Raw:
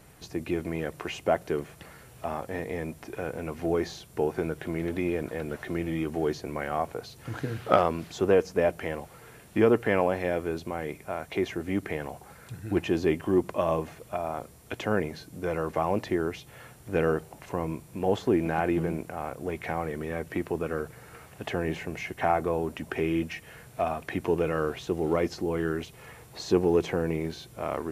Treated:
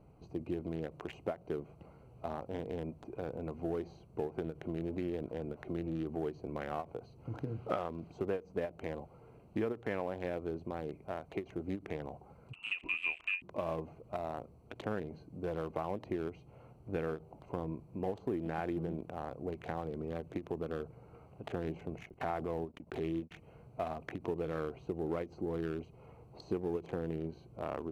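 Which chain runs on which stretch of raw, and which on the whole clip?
0:12.53–0:13.42: low-shelf EQ 150 Hz +7.5 dB + hum removal 143.2 Hz, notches 8 + voice inversion scrambler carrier 2,800 Hz
0:22.07–0:23.31: noise gate −37 dBFS, range −49 dB + transient designer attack −5 dB, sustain +4 dB + background raised ahead of every attack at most 87 dB per second
whole clip: adaptive Wiener filter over 25 samples; downward compressor 4 to 1, threshold −28 dBFS; every ending faded ahead of time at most 290 dB per second; level −4.5 dB

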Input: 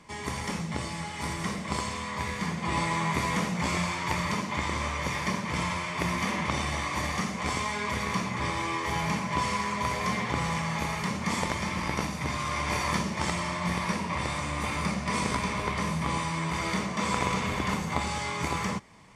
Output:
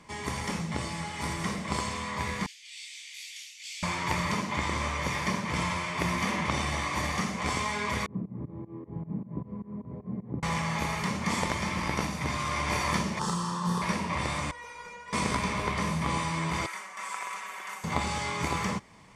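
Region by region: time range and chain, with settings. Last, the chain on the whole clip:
0:02.46–0:03.83: Butterworth high-pass 2,600 Hz + parametric band 9,100 Hz −5.5 dB 0.23 octaves + micro pitch shift up and down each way 54 cents
0:08.06–0:10.43: fake sidechain pumping 154 BPM, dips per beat 2, −22 dB, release 162 ms + flat-topped band-pass 190 Hz, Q 0.74
0:13.19–0:13.82: phaser with its sweep stopped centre 440 Hz, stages 8 + double-tracking delay 35 ms −5 dB
0:14.51–0:15.13: mid-hump overdrive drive 14 dB, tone 2,400 Hz, clips at −16 dBFS + tuned comb filter 480 Hz, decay 0.18 s, mix 100%
0:16.66–0:17.84: high-pass filter 1,400 Hz + parametric band 4,000 Hz −13.5 dB 1.6 octaves + comb filter 5.3 ms, depth 58%
whole clip: no processing

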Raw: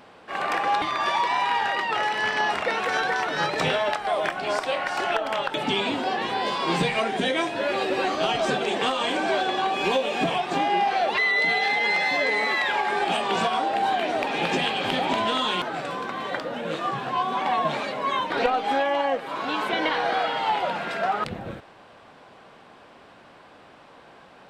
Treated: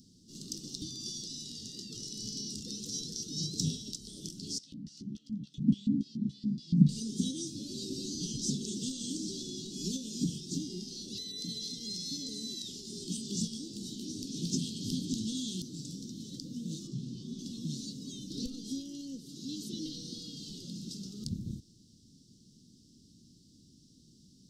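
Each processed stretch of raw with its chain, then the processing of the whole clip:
0:04.58–0:06.89: low shelf with overshoot 260 Hz +11.5 dB, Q 1.5 + auto-filter band-pass square 3.5 Hz 240–2,100 Hz + double-tracking delay 14 ms −8 dB
0:16.87–0:17.39: low-pass filter 3,400 Hz 6 dB per octave + double-tracking delay 48 ms −11.5 dB
whole clip: inverse Chebyshev band-stop filter 660–2,400 Hz, stop band 60 dB; flat-topped bell 2,800 Hz +11.5 dB 2.6 octaves

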